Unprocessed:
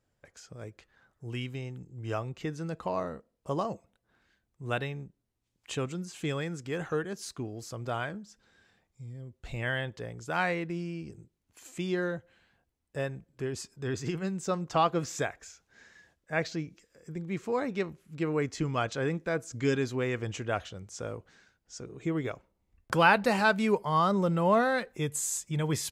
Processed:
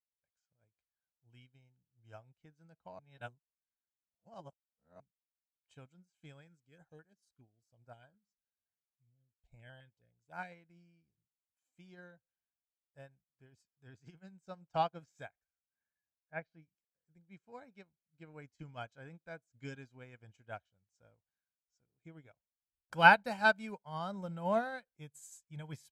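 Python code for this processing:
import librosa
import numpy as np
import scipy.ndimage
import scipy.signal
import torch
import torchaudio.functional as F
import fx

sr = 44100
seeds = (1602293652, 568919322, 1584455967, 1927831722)

y = fx.filter_held_notch(x, sr, hz=9.6, low_hz=720.0, high_hz=3300.0, at=(6.47, 10.52))
y = fx.lowpass(y, sr, hz=fx.line((15.42, 1700.0), (16.61, 2900.0)), slope=12, at=(15.42, 16.61), fade=0.02)
y = fx.edit(y, sr, fx.reverse_span(start_s=2.99, length_s=2.01), tone=tone)
y = y + 0.55 * np.pad(y, (int(1.3 * sr / 1000.0), 0))[:len(y)]
y = fx.upward_expand(y, sr, threshold_db=-42.0, expansion=2.5)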